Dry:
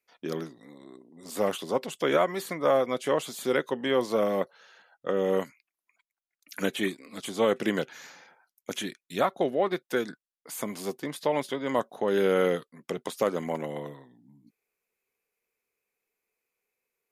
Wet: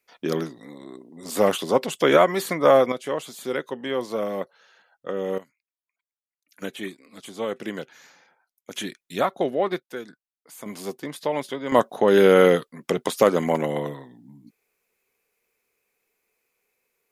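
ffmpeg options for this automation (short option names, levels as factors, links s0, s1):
-af "asetnsamples=n=441:p=0,asendcmd='2.92 volume volume -1.5dB;5.38 volume volume -14.5dB;6.62 volume volume -4.5dB;8.76 volume volume 2.5dB;9.8 volume volume -6.5dB;10.66 volume volume 1dB;11.72 volume volume 9dB',volume=2.37"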